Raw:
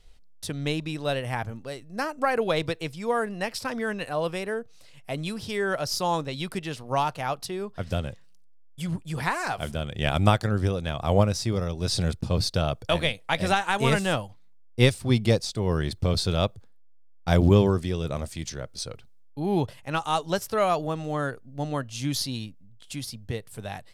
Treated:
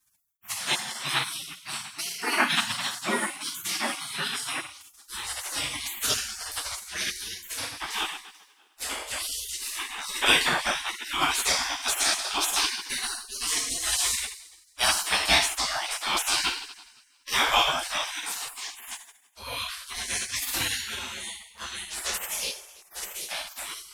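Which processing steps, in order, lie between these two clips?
coupled-rooms reverb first 0.65 s, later 1.8 s, DRR −8.5 dB
high-pass filter sweep 400 Hz → 61 Hz, 0:04.14–0:05.14
gate on every frequency bin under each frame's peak −30 dB weak
level +7.5 dB

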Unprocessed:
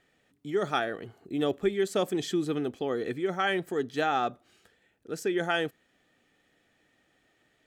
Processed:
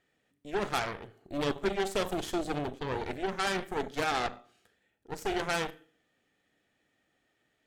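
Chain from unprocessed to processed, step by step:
four-comb reverb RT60 0.49 s, combs from 28 ms, DRR 10 dB
harmonic generator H 3 −18 dB, 8 −15 dB, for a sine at −14 dBFS
level −2.5 dB

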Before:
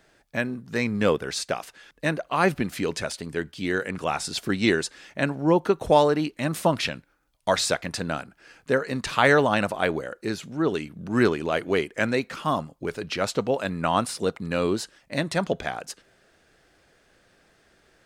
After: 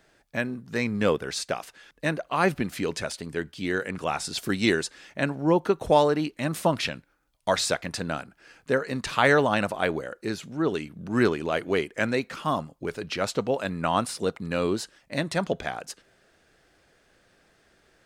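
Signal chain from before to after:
0:04.38–0:04.81: high-shelf EQ 4,600 Hz → 9,500 Hz +9 dB
level −1.5 dB

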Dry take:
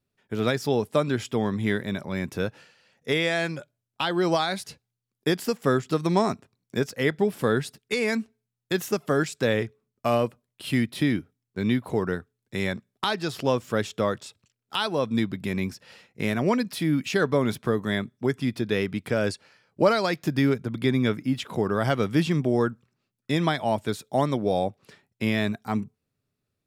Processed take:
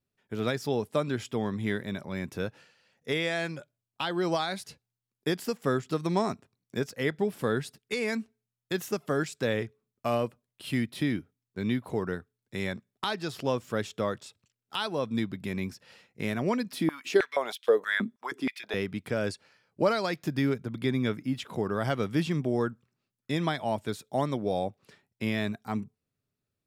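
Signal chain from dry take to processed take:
0:16.73–0:18.74: high-pass on a step sequencer 6.3 Hz 230–3,200 Hz
level −5 dB

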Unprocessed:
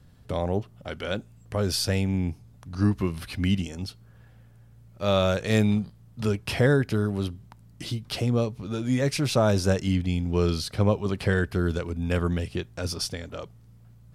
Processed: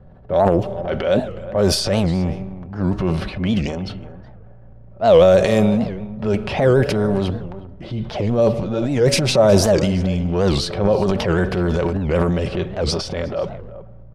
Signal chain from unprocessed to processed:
on a send at −20 dB: convolution reverb RT60 1.2 s, pre-delay 32 ms
on the sum: downward compressor 2.5 to 1, threshold −24 dBFS, peak gain reduction 6 dB
parametric band 600 Hz +12 dB 0.99 octaves
transient designer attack −6 dB, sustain +9 dB
slap from a distant wall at 63 metres, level −15 dB
low-pass that shuts in the quiet parts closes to 1,400 Hz, open at −17.5 dBFS
low-shelf EQ 99 Hz +6.5 dB
comb filter 5.3 ms, depth 35%
wow of a warped record 78 rpm, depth 250 cents
level +5 dB

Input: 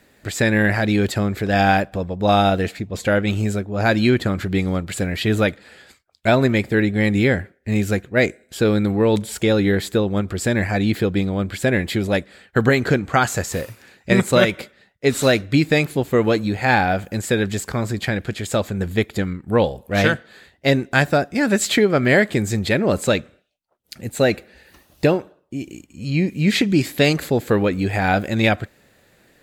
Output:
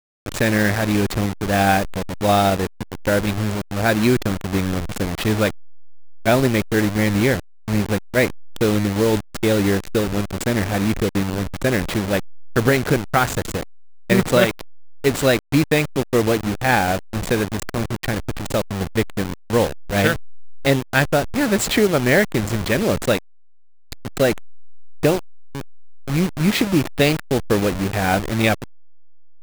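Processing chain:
hold until the input has moved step −19.5 dBFS

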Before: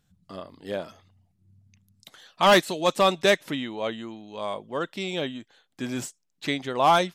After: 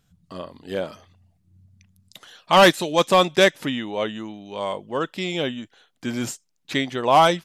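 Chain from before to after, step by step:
wrong playback speed 25 fps video run at 24 fps
level +4 dB

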